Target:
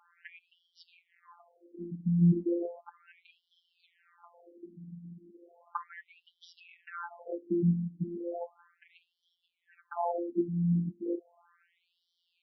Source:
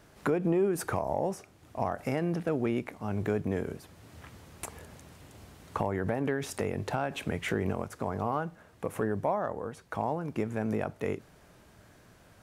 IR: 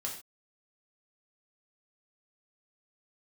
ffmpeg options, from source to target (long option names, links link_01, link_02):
-filter_complex "[0:a]aemphasis=mode=reproduction:type=riaa,acrossover=split=120|870|6100[link_01][link_02][link_03][link_04];[link_04]acrusher=bits=6:dc=4:mix=0:aa=0.000001[link_05];[link_01][link_02][link_03][link_05]amix=inputs=4:normalize=0,afftfilt=real='hypot(re,im)*cos(PI*b)':imag='0':win_size=1024:overlap=0.75,afftfilt=real='re*between(b*sr/1024,210*pow(4200/210,0.5+0.5*sin(2*PI*0.35*pts/sr))/1.41,210*pow(4200/210,0.5+0.5*sin(2*PI*0.35*pts/sr))*1.41)':imag='im*between(b*sr/1024,210*pow(4200/210,0.5+0.5*sin(2*PI*0.35*pts/sr))/1.41,210*pow(4200/210,0.5+0.5*sin(2*PI*0.35*pts/sr))*1.41)':win_size=1024:overlap=0.75,volume=3.5dB"